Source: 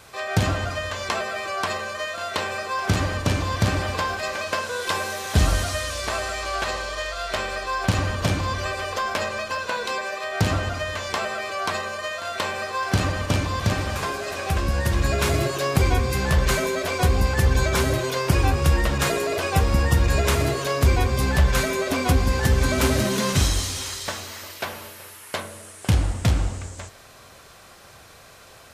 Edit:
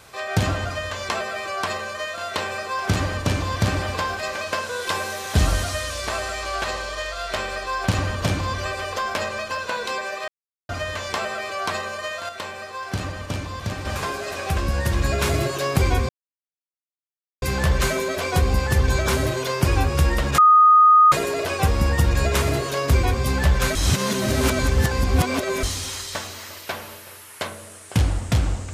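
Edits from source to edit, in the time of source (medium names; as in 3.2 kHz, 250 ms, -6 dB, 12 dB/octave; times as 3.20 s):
10.28–10.69 s: mute
12.29–13.85 s: gain -6 dB
16.09 s: insert silence 1.33 s
19.05 s: add tone 1.24 kHz -9 dBFS 0.74 s
21.68–23.56 s: reverse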